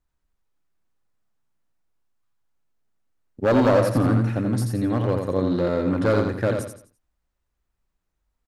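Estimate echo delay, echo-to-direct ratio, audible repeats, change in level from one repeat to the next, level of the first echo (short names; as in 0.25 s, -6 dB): 85 ms, -4.5 dB, 4, -9.5 dB, -5.0 dB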